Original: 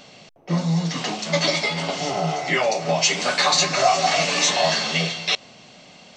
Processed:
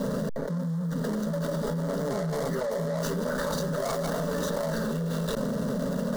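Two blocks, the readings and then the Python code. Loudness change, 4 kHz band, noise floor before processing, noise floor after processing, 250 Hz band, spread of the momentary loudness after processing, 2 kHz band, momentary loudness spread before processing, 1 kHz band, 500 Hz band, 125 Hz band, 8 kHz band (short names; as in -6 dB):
-9.0 dB, -20.5 dB, -48 dBFS, -31 dBFS, -0.5 dB, 1 LU, -15.5 dB, 7 LU, -13.5 dB, -4.0 dB, -2.5 dB, -16.5 dB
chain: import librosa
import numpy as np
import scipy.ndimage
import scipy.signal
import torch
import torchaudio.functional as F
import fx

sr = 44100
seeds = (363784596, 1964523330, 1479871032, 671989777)

y = scipy.ndimage.median_filter(x, 41, mode='constant')
y = fx.notch(y, sr, hz=2100.0, q=23.0)
y = fx.rider(y, sr, range_db=10, speed_s=2.0)
y = fx.fixed_phaser(y, sr, hz=500.0, stages=8)
y = fx.env_flatten(y, sr, amount_pct=100)
y = y * librosa.db_to_amplitude(-7.5)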